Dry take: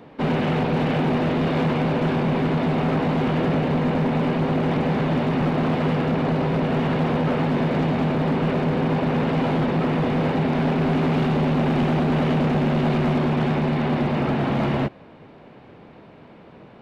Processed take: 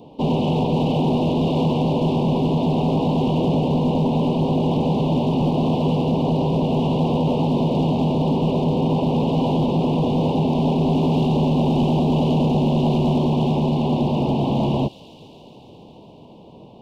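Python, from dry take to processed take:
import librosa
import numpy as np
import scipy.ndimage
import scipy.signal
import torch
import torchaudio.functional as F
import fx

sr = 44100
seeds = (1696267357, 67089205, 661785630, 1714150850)

y = scipy.signal.sosfilt(scipy.signal.ellip(3, 1.0, 70, [960.0, 2800.0], 'bandstop', fs=sr, output='sos'), x)
y = fx.echo_wet_highpass(y, sr, ms=139, feedback_pct=82, hz=3800.0, wet_db=-9.0)
y = y * librosa.db_to_amplitude(2.5)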